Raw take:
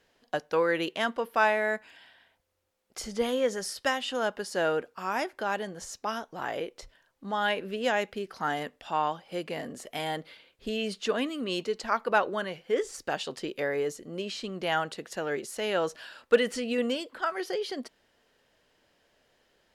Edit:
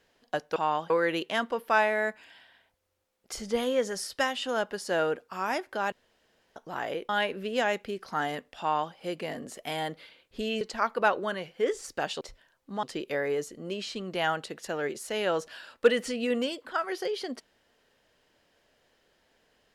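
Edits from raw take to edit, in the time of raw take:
5.58–6.22 s: room tone
6.75–7.37 s: move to 13.31 s
8.88–9.22 s: copy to 0.56 s
10.89–11.71 s: delete

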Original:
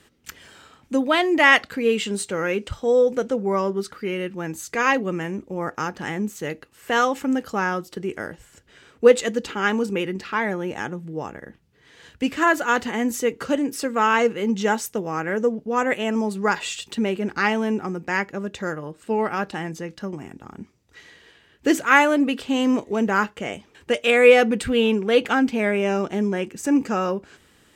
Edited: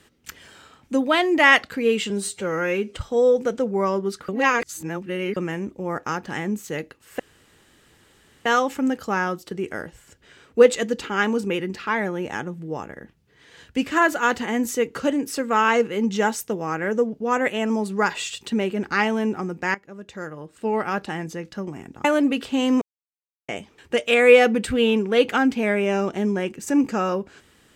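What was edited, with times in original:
2.10–2.67 s: stretch 1.5×
4.00–5.08 s: reverse
6.91 s: insert room tone 1.26 s
18.20–19.31 s: fade in, from -17 dB
20.50–22.01 s: delete
22.78–23.45 s: mute

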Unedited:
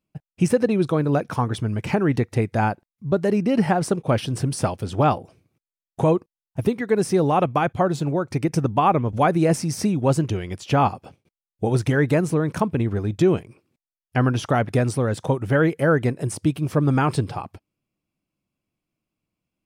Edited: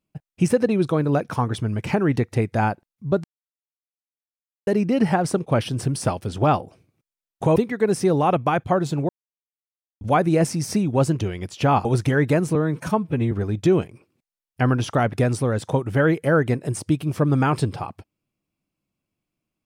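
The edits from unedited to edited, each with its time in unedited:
3.24 s: insert silence 1.43 s
6.13–6.65 s: delete
8.18–9.10 s: mute
10.94–11.66 s: delete
12.36–12.87 s: stretch 1.5×

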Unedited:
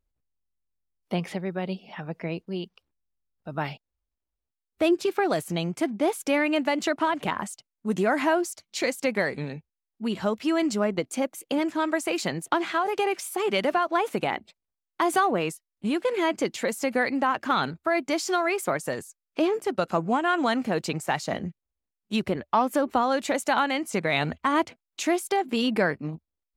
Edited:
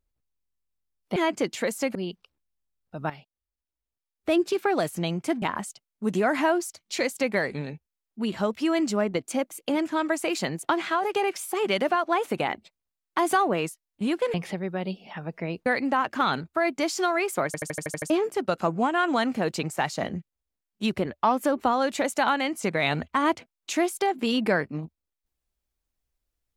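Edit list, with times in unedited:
1.16–2.48 s: swap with 16.17–16.96 s
3.63–5.01 s: fade in, from -12.5 dB
5.95–7.25 s: delete
18.76 s: stutter in place 0.08 s, 8 plays

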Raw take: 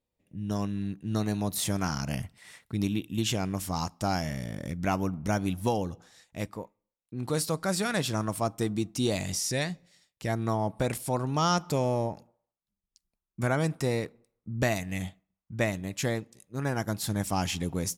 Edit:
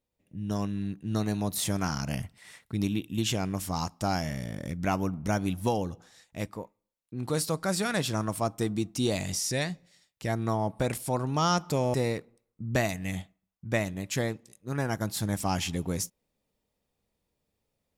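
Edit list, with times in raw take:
11.94–13.81 s: delete

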